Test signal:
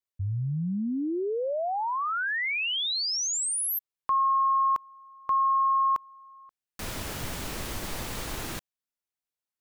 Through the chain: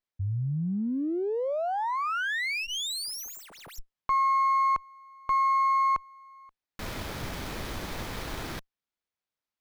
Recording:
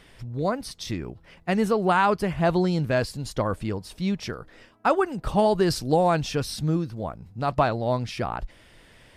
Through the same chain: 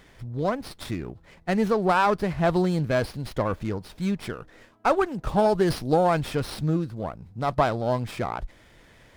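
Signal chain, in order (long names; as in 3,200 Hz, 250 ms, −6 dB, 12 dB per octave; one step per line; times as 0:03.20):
notch filter 2,800 Hz, Q 11
windowed peak hold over 5 samples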